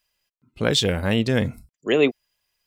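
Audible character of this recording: noise floor -91 dBFS; spectral tilt -4.5 dB/octave

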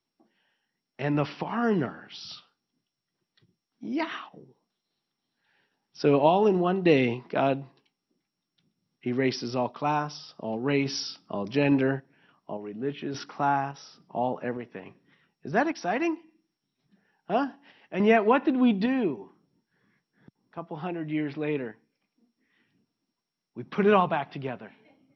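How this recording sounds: random-step tremolo; MP2

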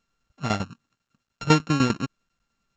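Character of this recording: a buzz of ramps at a fixed pitch in blocks of 32 samples; tremolo saw down 10 Hz, depth 80%; µ-law

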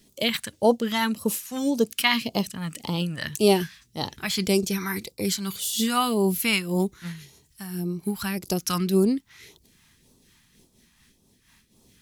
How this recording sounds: a quantiser's noise floor 12-bit, dither triangular; phasing stages 2, 1.8 Hz, lowest notch 420–1800 Hz; random flutter of the level

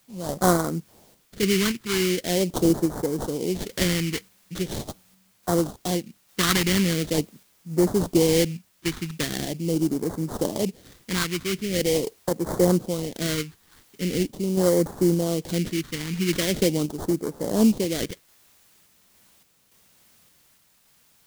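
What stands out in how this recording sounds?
aliases and images of a low sample rate 2.6 kHz, jitter 20%; phasing stages 2, 0.42 Hz, lowest notch 600–2600 Hz; a quantiser's noise floor 10-bit, dither triangular; random-step tremolo

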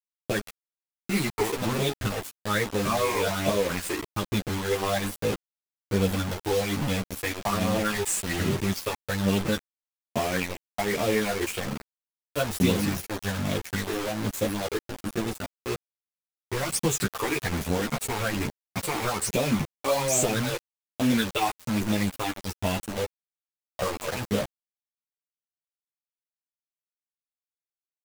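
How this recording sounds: phasing stages 8, 1.2 Hz, lowest notch 170–1600 Hz; a quantiser's noise floor 6-bit, dither none; a shimmering, thickened sound

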